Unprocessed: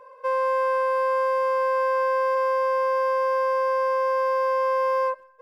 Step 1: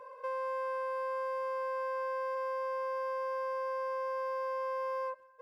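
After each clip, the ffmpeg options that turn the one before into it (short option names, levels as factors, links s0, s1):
-af "highpass=54,acompressor=threshold=0.00794:ratio=2,volume=0.841"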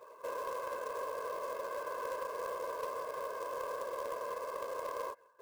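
-af "afftfilt=real='hypot(re,im)*cos(2*PI*random(0))':imag='hypot(re,im)*sin(2*PI*random(1))':win_size=512:overlap=0.75,acrusher=bits=4:mode=log:mix=0:aa=0.000001,aeval=exprs='0.0316*(cos(1*acos(clip(val(0)/0.0316,-1,1)))-cos(1*PI/2))+0.00282*(cos(3*acos(clip(val(0)/0.0316,-1,1)))-cos(3*PI/2))+0.0002*(cos(5*acos(clip(val(0)/0.0316,-1,1)))-cos(5*PI/2))':c=same,volume=1.5"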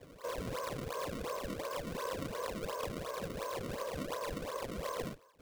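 -filter_complex "[0:a]flanger=delay=9.9:depth=6.4:regen=-63:speed=0.73:shape=sinusoidal,acrossover=split=480[s0][s1];[s1]acrusher=samples=30:mix=1:aa=0.000001:lfo=1:lforange=48:lforate=2.8[s2];[s0][s2]amix=inputs=2:normalize=0,volume=1.78"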